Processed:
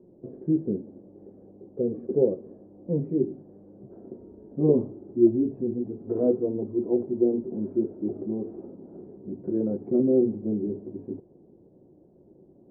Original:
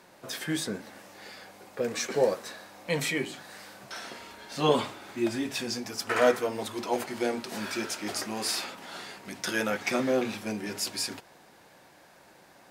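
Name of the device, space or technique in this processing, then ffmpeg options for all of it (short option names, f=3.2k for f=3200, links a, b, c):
under water: -af "lowpass=f=410:w=0.5412,lowpass=f=410:w=1.3066,equalizer=f=370:t=o:w=0.34:g=6,volume=6.5dB"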